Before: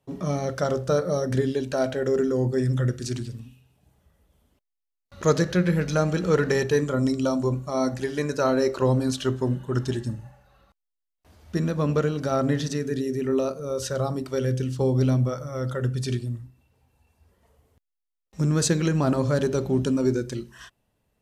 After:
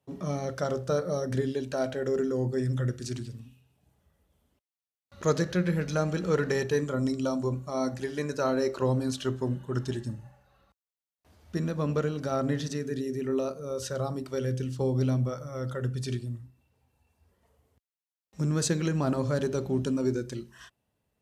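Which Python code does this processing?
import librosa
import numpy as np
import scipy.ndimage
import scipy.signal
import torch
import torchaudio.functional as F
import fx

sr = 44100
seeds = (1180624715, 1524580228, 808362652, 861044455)

y = scipy.signal.sosfilt(scipy.signal.butter(2, 51.0, 'highpass', fs=sr, output='sos'), x)
y = F.gain(torch.from_numpy(y), -5.0).numpy()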